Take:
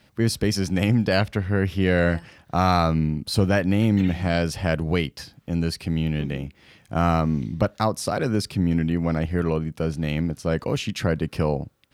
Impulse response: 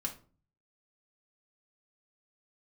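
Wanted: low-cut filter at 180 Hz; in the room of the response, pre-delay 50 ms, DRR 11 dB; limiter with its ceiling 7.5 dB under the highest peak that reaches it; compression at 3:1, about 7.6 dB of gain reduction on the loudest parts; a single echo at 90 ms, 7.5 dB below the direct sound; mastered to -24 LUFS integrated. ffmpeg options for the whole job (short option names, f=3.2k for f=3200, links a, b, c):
-filter_complex "[0:a]highpass=180,acompressor=threshold=-26dB:ratio=3,alimiter=limit=-18dB:level=0:latency=1,aecho=1:1:90:0.422,asplit=2[a][b];[1:a]atrim=start_sample=2205,adelay=50[c];[b][c]afir=irnorm=-1:irlink=0,volume=-12dB[d];[a][d]amix=inputs=2:normalize=0,volume=6.5dB"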